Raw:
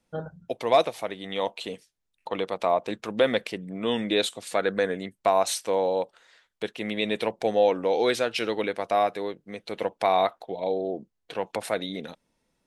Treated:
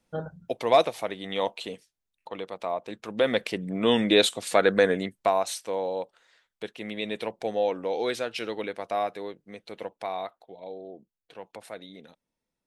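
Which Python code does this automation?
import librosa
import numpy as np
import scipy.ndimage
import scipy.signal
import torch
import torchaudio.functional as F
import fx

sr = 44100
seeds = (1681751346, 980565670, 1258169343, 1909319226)

y = fx.gain(x, sr, db=fx.line((1.43, 0.5), (2.34, -7.0), (2.88, -7.0), (3.66, 4.5), (5.01, 4.5), (5.47, -5.0), (9.53, -5.0), (10.31, -12.5)))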